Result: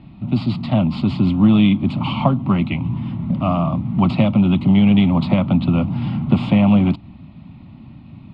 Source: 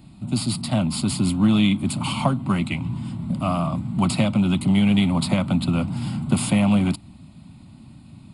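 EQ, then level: low-pass 3.1 kHz 24 dB/octave; band-stop 1.5 kHz, Q 14; dynamic bell 1.8 kHz, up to -6 dB, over -44 dBFS, Q 1.4; +5.0 dB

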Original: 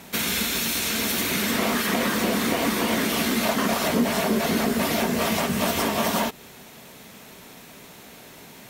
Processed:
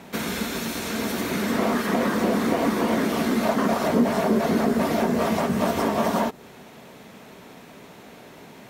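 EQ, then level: high-pass 510 Hz 6 dB/octave; dynamic bell 2.8 kHz, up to -5 dB, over -44 dBFS, Q 1.2; tilt EQ -3.5 dB/octave; +2.5 dB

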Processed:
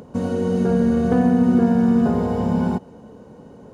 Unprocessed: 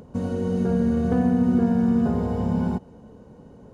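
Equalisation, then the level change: bass shelf 110 Hz -11 dB; +6.0 dB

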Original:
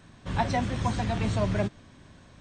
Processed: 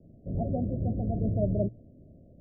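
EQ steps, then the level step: steep low-pass 670 Hz 96 dB/octave; hum notches 60/120 Hz; 0.0 dB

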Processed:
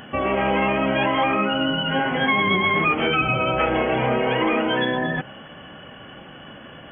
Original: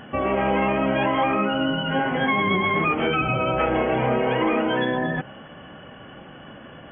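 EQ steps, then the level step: treble shelf 3 kHz +10 dB; 0.0 dB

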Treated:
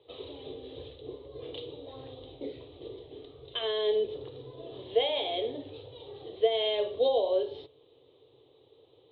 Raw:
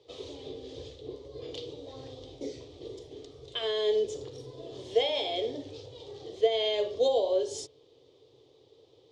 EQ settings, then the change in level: rippled Chebyshev low-pass 4 kHz, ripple 3 dB; +1.5 dB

